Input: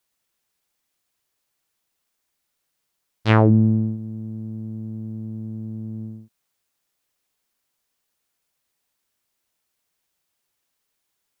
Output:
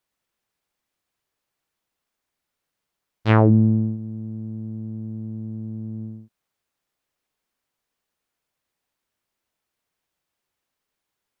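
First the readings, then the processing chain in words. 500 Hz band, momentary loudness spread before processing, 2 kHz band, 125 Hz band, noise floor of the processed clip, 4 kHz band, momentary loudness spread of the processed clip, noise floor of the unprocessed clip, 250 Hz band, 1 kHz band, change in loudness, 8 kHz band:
0.0 dB, 17 LU, -2.0 dB, 0.0 dB, -83 dBFS, -4.0 dB, 17 LU, -77 dBFS, 0.0 dB, -0.5 dB, 0.0 dB, n/a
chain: high shelf 3600 Hz -9 dB

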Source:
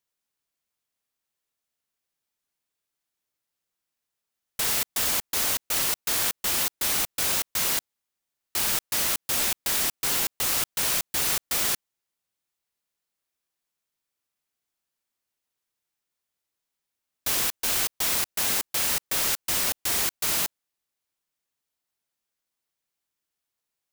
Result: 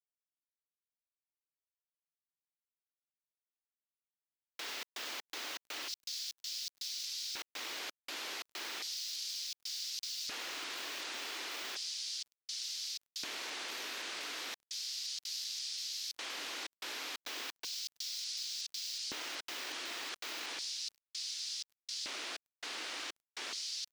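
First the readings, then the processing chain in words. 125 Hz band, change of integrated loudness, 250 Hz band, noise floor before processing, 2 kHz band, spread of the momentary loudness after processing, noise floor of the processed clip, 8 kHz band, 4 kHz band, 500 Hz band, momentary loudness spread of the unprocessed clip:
under -25 dB, -15.5 dB, -14.0 dB, -85 dBFS, -9.5 dB, 4 LU, under -85 dBFS, -14.5 dB, -6.0 dB, -12.5 dB, 2 LU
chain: tilt +4 dB/oct; echoes that change speed 0.543 s, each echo -6 st, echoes 2; in parallel at +1.5 dB: limiter -3.5 dBFS, peak gain reduction 7 dB; on the sum: HPF 150 Hz 12 dB/oct; air absorption 230 m; level quantiser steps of 18 dB; LFO high-pass square 0.34 Hz 300–4800 Hz; on a send: echo 0.101 s -23.5 dB; on the sum: sample gate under -48 dBFS; gain -6.5 dB

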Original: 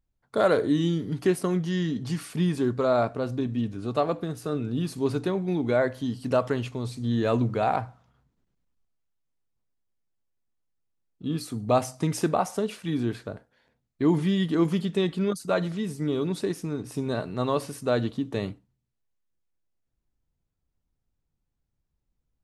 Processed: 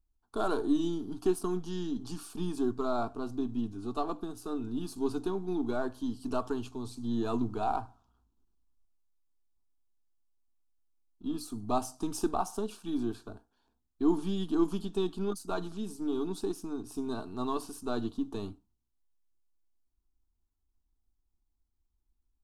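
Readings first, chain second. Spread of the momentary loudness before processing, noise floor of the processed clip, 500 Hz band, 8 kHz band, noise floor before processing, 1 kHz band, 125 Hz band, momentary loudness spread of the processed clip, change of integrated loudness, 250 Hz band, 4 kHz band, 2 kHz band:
8 LU, -79 dBFS, -8.5 dB, -4.5 dB, -79 dBFS, -5.5 dB, -13.5 dB, 9 LU, -7.0 dB, -5.5 dB, -8.0 dB, -12.0 dB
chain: half-wave gain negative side -3 dB; low shelf 86 Hz +7.5 dB; fixed phaser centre 540 Hz, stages 6; gain -2.5 dB

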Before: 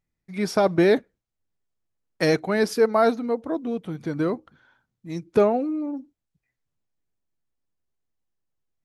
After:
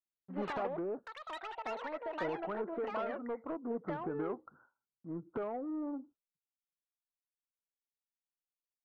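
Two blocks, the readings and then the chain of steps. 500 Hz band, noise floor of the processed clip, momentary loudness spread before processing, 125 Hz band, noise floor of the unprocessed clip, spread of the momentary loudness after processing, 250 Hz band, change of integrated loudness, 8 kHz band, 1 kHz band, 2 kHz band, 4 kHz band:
-16.5 dB, under -85 dBFS, 14 LU, -18.0 dB, -83 dBFS, 8 LU, -15.0 dB, -16.5 dB, under -25 dB, -11.5 dB, -14.5 dB, -18.0 dB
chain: Chebyshev low-pass 1400 Hz, order 6; gate with hold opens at -52 dBFS; tilt +3.5 dB/oct; compressor 6:1, threshold -34 dBFS, peak gain reduction 16 dB; soft clip -31 dBFS, distortion -16 dB; echoes that change speed 96 ms, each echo +6 st, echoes 3

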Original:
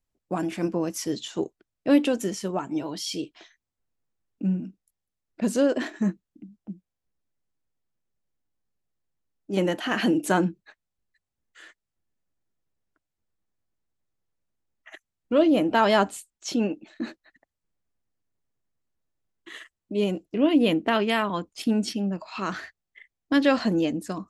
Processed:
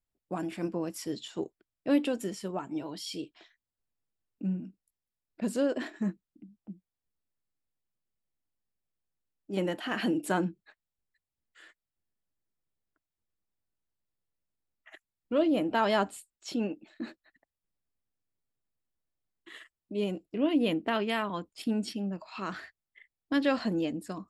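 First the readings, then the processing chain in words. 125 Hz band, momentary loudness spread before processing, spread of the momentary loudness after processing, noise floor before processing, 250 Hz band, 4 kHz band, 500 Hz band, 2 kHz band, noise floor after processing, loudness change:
-6.5 dB, 17 LU, 18 LU, -85 dBFS, -6.5 dB, -6.5 dB, -6.5 dB, -6.5 dB, under -85 dBFS, -6.5 dB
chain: notch 6200 Hz, Q 5.5; gain -6.5 dB

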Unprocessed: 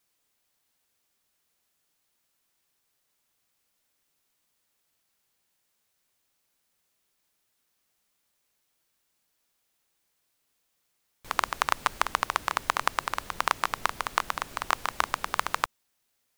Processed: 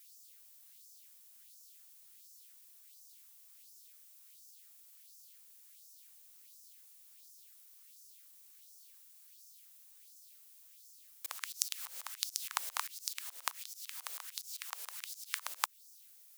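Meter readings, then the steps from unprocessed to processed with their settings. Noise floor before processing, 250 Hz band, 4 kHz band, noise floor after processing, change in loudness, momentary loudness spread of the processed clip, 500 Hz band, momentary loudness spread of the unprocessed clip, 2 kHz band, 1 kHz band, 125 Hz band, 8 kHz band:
-76 dBFS, under -40 dB, -6.5 dB, -60 dBFS, -10.0 dB, 19 LU, -24.0 dB, 4 LU, -15.0 dB, -18.0 dB, under -40 dB, 0.0 dB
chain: auto swell 0.31 s; LFO high-pass sine 1.4 Hz 490–5700 Hz; differentiator; gain +13 dB

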